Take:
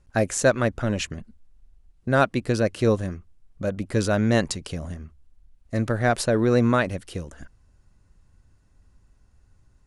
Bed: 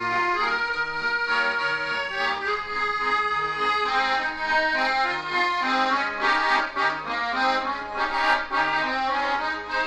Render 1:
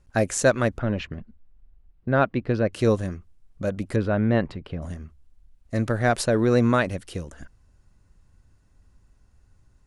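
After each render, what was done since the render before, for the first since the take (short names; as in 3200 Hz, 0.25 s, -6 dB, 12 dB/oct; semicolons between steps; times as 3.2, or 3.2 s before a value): 0.78–2.73 air absorption 300 m; 3.96–4.82 air absorption 430 m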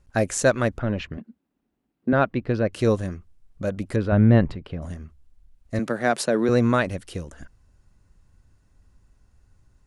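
1.17–2.13 resonant high-pass 250 Hz, resonance Q 2.6; 4.12–4.55 low shelf 210 Hz +11 dB; 5.79–6.49 steep high-pass 150 Hz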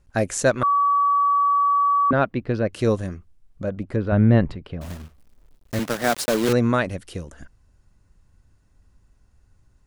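0.63–2.11 bleep 1140 Hz -15.5 dBFS; 3.63–4.07 LPF 1700 Hz 6 dB/oct; 4.81–6.53 block floating point 3-bit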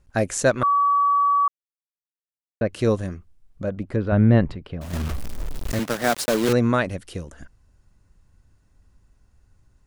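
1.48–2.61 mute; 4.93–5.75 fast leveller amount 100%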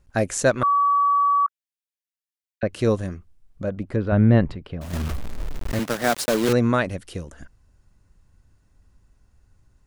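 1.46–2.63 steep high-pass 1500 Hz 96 dB/oct; 5.17–5.86 median filter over 9 samples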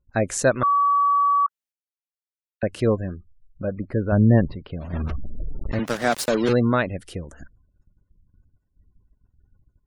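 spectral gate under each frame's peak -30 dB strong; gate -55 dBFS, range -12 dB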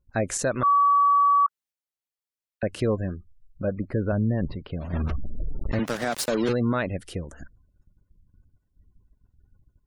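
limiter -15.5 dBFS, peak gain reduction 11.5 dB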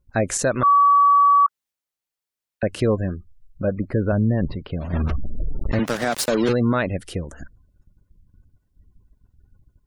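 gain +4.5 dB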